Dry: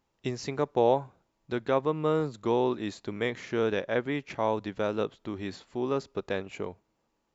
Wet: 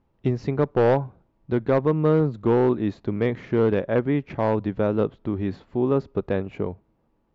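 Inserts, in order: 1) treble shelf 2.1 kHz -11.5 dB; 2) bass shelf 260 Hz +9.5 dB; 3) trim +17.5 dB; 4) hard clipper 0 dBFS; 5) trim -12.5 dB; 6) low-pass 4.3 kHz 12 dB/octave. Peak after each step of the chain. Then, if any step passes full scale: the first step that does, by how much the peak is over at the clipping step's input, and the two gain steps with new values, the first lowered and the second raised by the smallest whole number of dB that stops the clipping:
-12.5 dBFS, -10.0 dBFS, +7.5 dBFS, 0.0 dBFS, -12.5 dBFS, -12.5 dBFS; step 3, 7.5 dB; step 3 +9.5 dB, step 5 -4.5 dB

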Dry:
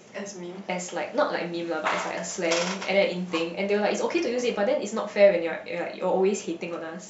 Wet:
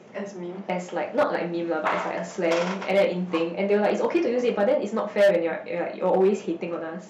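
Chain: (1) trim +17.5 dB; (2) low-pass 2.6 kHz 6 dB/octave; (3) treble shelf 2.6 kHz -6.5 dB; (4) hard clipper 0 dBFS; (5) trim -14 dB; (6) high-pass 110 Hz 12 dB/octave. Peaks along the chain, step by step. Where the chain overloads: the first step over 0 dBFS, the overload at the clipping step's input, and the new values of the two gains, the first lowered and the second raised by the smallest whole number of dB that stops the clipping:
+11.0 dBFS, +10.5 dBFS, +10.0 dBFS, 0.0 dBFS, -14.0 dBFS, -11.5 dBFS; step 1, 10.0 dB; step 1 +7.5 dB, step 5 -4 dB

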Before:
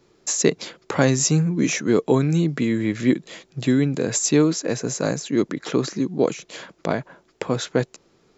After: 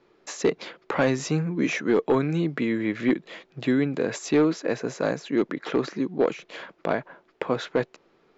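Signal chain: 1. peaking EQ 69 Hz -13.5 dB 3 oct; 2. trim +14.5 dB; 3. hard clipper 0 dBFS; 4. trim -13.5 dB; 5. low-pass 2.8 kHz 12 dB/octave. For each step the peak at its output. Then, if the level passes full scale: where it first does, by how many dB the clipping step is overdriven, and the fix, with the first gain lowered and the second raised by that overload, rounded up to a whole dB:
-5.0 dBFS, +9.5 dBFS, 0.0 dBFS, -13.5 dBFS, -13.0 dBFS; step 2, 9.5 dB; step 2 +4.5 dB, step 4 -3.5 dB

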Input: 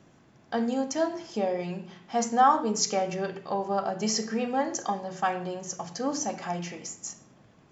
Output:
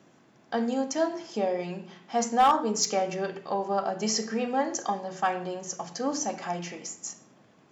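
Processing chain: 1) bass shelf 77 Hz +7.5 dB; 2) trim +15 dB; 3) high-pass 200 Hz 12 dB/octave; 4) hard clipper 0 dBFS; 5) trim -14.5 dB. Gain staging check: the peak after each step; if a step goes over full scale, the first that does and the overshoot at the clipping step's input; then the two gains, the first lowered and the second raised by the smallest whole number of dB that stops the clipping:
-9.0 dBFS, +6.0 dBFS, +5.5 dBFS, 0.0 dBFS, -14.5 dBFS; step 2, 5.5 dB; step 2 +9 dB, step 5 -8.5 dB

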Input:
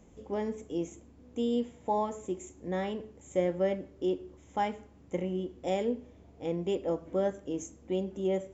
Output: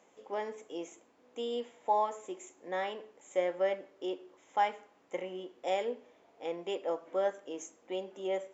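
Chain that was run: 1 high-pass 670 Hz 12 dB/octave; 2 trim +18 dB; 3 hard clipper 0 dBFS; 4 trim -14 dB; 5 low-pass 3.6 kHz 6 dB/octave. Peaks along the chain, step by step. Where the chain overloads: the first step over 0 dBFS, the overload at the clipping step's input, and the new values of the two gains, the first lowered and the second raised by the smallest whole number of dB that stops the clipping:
-20.5 dBFS, -2.5 dBFS, -2.5 dBFS, -16.5 dBFS, -17.0 dBFS; nothing clips

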